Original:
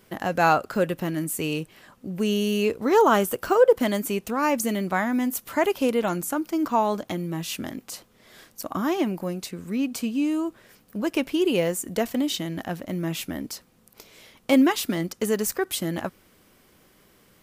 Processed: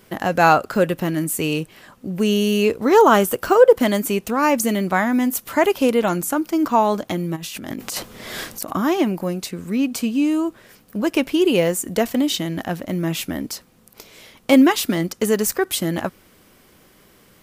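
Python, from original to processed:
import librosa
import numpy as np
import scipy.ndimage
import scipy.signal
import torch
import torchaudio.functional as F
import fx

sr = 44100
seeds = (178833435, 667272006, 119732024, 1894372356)

y = fx.over_compress(x, sr, threshold_db=-42.0, ratio=-1.0, at=(7.35, 8.7), fade=0.02)
y = y * librosa.db_to_amplitude(5.5)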